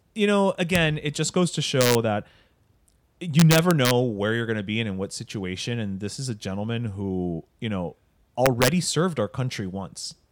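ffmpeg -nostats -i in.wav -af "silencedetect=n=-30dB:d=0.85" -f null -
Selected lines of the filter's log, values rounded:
silence_start: 2.21
silence_end: 3.21 | silence_duration: 1.01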